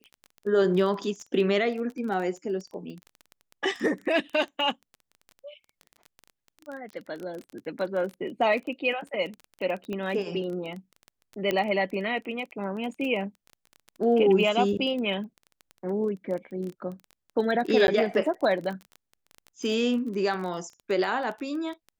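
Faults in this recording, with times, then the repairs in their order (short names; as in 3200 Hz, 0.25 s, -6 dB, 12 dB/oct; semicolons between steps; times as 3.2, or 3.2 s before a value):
crackle 20/s -33 dBFS
9.93 pop -22 dBFS
11.51 pop -14 dBFS
17.87–17.88 gap 11 ms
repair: de-click; interpolate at 17.87, 11 ms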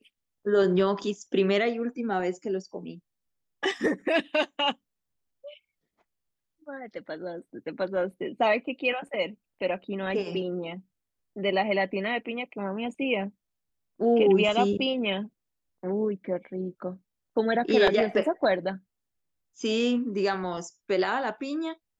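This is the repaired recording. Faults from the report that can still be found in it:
none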